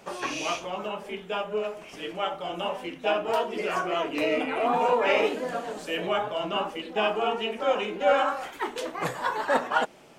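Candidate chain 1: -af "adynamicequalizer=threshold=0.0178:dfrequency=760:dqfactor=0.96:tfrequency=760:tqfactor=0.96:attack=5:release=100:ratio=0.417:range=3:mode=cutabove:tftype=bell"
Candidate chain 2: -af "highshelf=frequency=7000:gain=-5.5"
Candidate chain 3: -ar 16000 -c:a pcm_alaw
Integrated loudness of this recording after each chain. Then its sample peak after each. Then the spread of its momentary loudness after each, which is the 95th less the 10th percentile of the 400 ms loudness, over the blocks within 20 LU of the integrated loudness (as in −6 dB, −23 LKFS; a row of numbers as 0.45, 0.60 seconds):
−29.5, −28.0, −28.0 LKFS; −12.0, −11.5, −11.0 dBFS; 8, 10, 9 LU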